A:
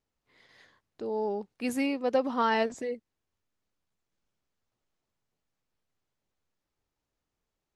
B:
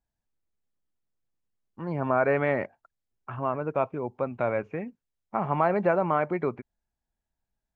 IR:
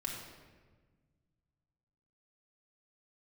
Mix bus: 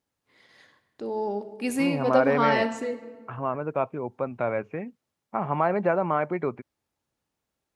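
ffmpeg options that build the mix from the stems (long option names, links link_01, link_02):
-filter_complex "[0:a]equalizer=frequency=9500:width=4.9:gain=5.5,volume=-0.5dB,asplit=2[link_01][link_02];[link_02]volume=-5.5dB[link_03];[1:a]volume=0dB[link_04];[2:a]atrim=start_sample=2205[link_05];[link_03][link_05]afir=irnorm=-1:irlink=0[link_06];[link_01][link_04][link_06]amix=inputs=3:normalize=0,highpass=85"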